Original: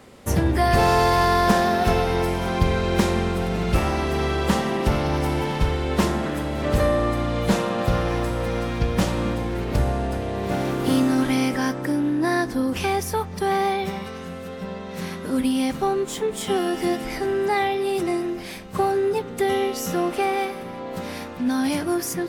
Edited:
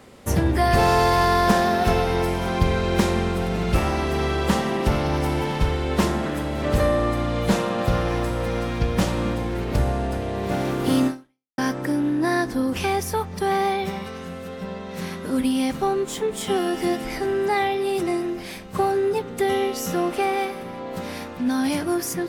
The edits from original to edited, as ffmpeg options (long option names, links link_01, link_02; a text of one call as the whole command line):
ffmpeg -i in.wav -filter_complex "[0:a]asplit=2[link_01][link_02];[link_01]atrim=end=11.58,asetpts=PTS-STARTPTS,afade=type=out:start_time=11.07:duration=0.51:curve=exp[link_03];[link_02]atrim=start=11.58,asetpts=PTS-STARTPTS,afade=type=in:duration=0.004:curve=hsin[link_04];[link_03][link_04]concat=n=2:v=0:a=1" out.wav